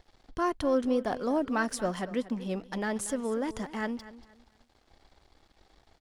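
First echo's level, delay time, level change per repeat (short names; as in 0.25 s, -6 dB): -16.0 dB, 0.236 s, -11.5 dB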